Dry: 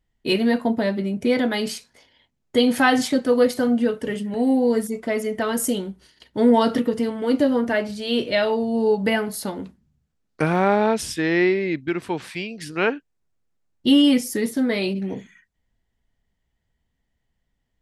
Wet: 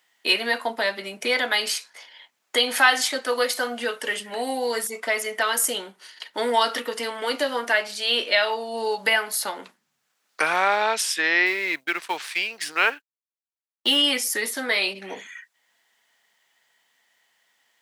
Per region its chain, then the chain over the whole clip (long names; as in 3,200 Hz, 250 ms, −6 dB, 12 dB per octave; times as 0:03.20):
0:11.46–0:13.97: mu-law and A-law mismatch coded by A + downward expander −41 dBFS
whole clip: high-pass filter 1,000 Hz 12 dB per octave; multiband upward and downward compressor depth 40%; level +6.5 dB